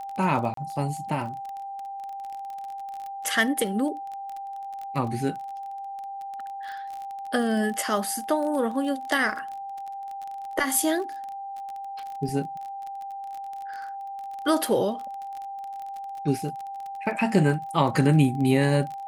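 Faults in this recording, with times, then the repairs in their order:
crackle 25 per s -32 dBFS
whine 790 Hz -33 dBFS
0.54–0.57 s: dropout 33 ms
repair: de-click; band-stop 790 Hz, Q 30; interpolate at 0.54 s, 33 ms

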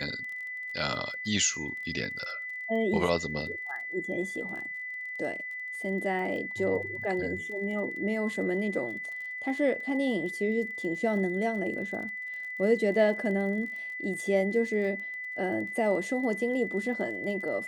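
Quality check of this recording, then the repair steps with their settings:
crackle 27 per s -39 dBFS
whine 2 kHz -35 dBFS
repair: de-click; band-stop 2 kHz, Q 30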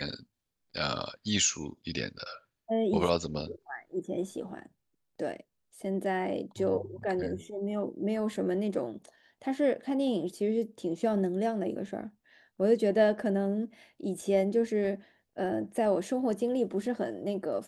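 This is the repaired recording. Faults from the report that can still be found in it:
nothing left

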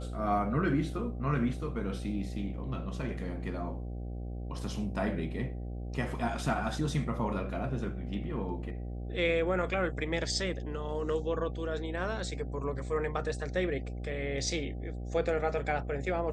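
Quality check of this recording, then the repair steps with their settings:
buzz 60 Hz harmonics 13 -38 dBFS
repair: de-hum 60 Hz, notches 13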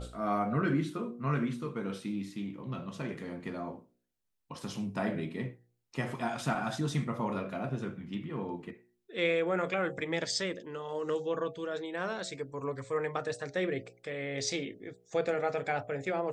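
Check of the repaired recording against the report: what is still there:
nothing left

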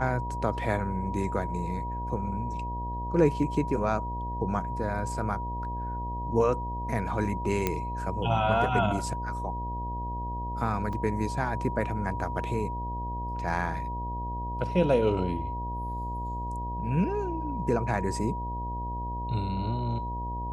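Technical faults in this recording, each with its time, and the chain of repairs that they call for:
buzz 60 Hz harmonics 14 -35 dBFS
whine 960 Hz -34 dBFS
7.67 s: pop -11 dBFS
10.93 s: dropout 2.2 ms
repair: de-click; de-hum 60 Hz, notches 14; band-stop 960 Hz, Q 30; interpolate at 10.93 s, 2.2 ms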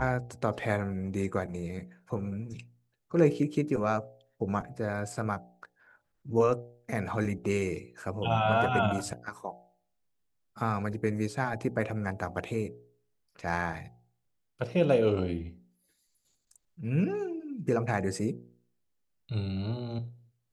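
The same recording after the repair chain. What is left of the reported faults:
nothing left

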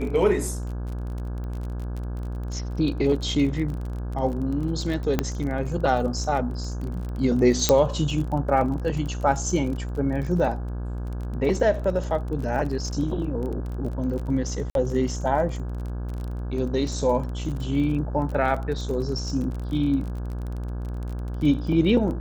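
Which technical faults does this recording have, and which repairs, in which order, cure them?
buzz 60 Hz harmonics 28 -30 dBFS
crackle 29 per s -31 dBFS
5.19 s: pop -8 dBFS
7.69 s: pop -3 dBFS
14.70–14.75 s: dropout 52 ms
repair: de-click; de-hum 60 Hz, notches 28; interpolate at 14.70 s, 52 ms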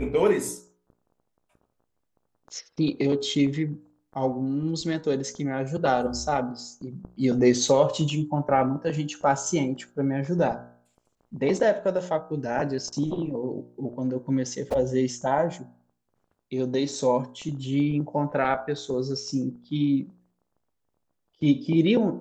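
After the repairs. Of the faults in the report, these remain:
7.69 s: pop

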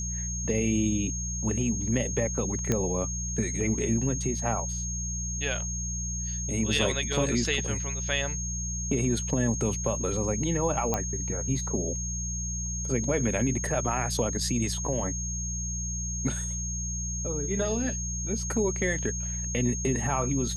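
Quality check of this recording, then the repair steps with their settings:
hum 60 Hz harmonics 3 -34 dBFS
whine 6.5 kHz -33 dBFS
2.72 s: pop -12 dBFS
10.94 s: pop -12 dBFS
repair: de-click; de-hum 60 Hz, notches 3; band-stop 6.5 kHz, Q 30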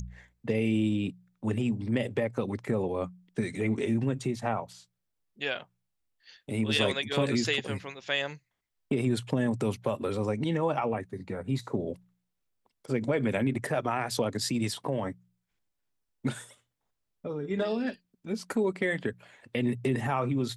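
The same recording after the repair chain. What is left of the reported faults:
nothing left

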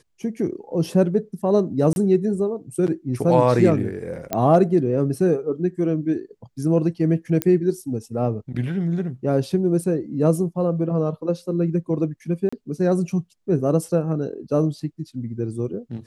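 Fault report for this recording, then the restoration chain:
1.93–1.96 s: dropout 31 ms
4.33 s: pop -9 dBFS
7.42 s: pop -6 dBFS
12.49–12.53 s: dropout 35 ms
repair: de-click; interpolate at 1.93 s, 31 ms; interpolate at 12.49 s, 35 ms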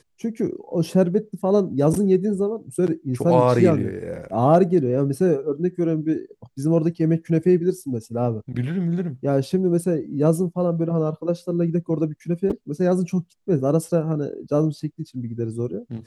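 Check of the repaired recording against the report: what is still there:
nothing left

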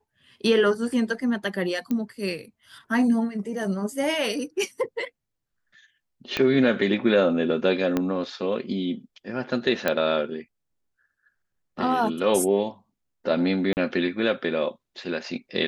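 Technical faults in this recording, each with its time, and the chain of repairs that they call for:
1.91 s: pop -16 dBFS
6.37 s: pop -11 dBFS
7.97 s: pop -11 dBFS
9.88 s: pop -9 dBFS
13.73–13.77 s: dropout 39 ms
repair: de-click; interpolate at 13.73 s, 39 ms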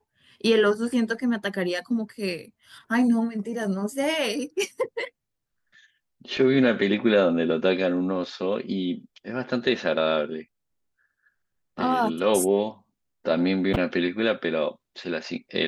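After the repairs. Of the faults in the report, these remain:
6.37 s: pop
7.97 s: pop

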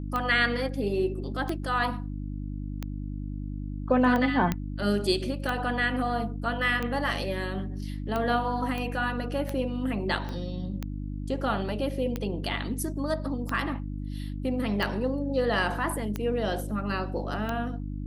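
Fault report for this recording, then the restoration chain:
hum 50 Hz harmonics 6 -34 dBFS
tick 45 rpm -17 dBFS
4.52 s: pop -13 dBFS
8.78 s: pop -20 dBFS
10.29 s: pop -23 dBFS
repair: de-click; de-hum 50 Hz, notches 6

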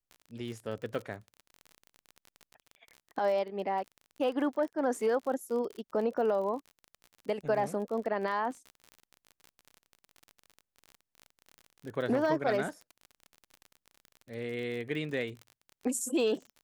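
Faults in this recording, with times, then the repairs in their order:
crackle 38 per s -38 dBFS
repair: de-click

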